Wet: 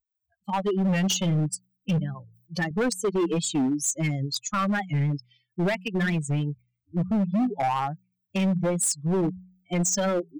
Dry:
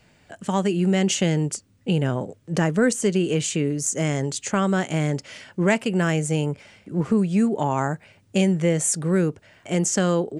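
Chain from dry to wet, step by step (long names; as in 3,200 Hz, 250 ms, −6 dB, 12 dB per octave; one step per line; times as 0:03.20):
spectral dynamics exaggerated over time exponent 3
noise reduction from a noise print of the clip's start 12 dB
0:01.98–0:02.71: spectral tilt +3.5 dB per octave
in parallel at −0.5 dB: downward compressor 6 to 1, threshold −34 dBFS, peak gain reduction 15 dB
on the sum: hum removal 61.29 Hz, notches 3
brickwall limiter −18 dBFS, peak gain reduction 7.5 dB
hard clipping −25.5 dBFS, distortion −11 dB
wow of a warped record 45 rpm, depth 160 cents
level +5 dB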